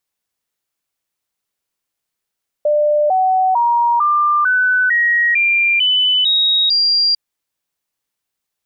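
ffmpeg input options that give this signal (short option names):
-f lavfi -i "aevalsrc='0.282*clip(min(mod(t,0.45),0.45-mod(t,0.45))/0.005,0,1)*sin(2*PI*596*pow(2,floor(t/0.45)/3)*mod(t,0.45))':d=4.5:s=44100"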